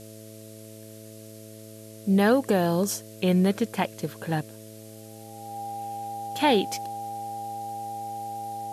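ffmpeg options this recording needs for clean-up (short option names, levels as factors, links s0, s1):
-af "bandreject=f=108.9:t=h:w=4,bandreject=f=217.8:t=h:w=4,bandreject=f=326.7:t=h:w=4,bandreject=f=435.6:t=h:w=4,bandreject=f=544.5:t=h:w=4,bandreject=f=653.4:t=h:w=4,bandreject=f=800:w=30,afftdn=nr=25:nf=-45"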